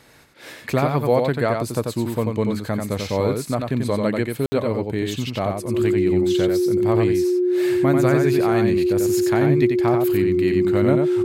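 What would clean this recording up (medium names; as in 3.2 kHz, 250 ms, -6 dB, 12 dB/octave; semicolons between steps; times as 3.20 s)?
band-stop 360 Hz, Q 30; room tone fill 4.46–4.52 s; inverse comb 90 ms -4.5 dB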